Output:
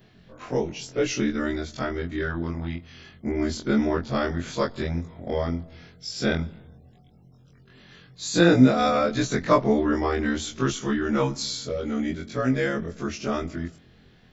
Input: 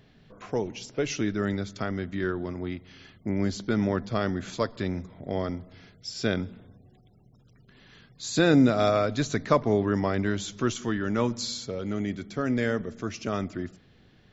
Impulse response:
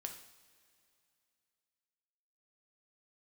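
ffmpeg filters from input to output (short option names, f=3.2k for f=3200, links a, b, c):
-af "afftfilt=real='re':imag='-im':win_size=2048:overlap=0.75,volume=7.5dB"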